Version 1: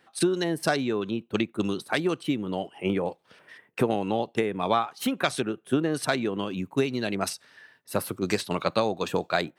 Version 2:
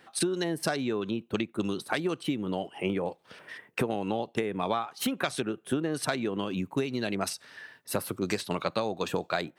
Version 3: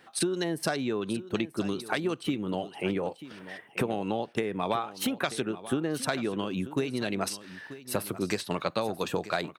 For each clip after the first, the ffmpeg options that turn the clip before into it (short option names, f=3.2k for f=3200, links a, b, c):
-af "acompressor=threshold=-35dB:ratio=2.5,volume=5dB"
-af "aecho=1:1:937:0.178"